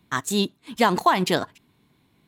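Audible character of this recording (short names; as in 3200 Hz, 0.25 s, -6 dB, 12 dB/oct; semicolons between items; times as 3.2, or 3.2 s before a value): noise floor -65 dBFS; spectral tilt -4.0 dB/oct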